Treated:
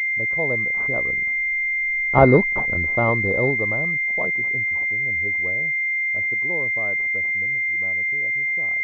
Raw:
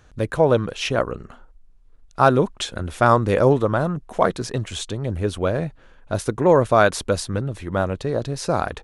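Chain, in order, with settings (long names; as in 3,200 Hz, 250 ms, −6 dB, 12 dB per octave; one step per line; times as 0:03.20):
source passing by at 0:02.27, 8 m/s, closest 3 metres
switching amplifier with a slow clock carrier 2,100 Hz
level +4 dB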